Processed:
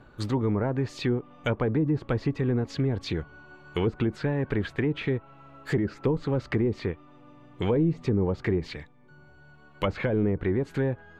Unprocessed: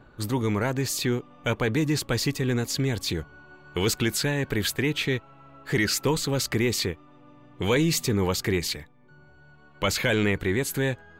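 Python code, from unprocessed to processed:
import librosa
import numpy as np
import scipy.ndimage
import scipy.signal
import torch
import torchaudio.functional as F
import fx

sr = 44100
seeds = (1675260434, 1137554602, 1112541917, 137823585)

y = fx.env_lowpass_down(x, sr, base_hz=590.0, full_db=-19.5)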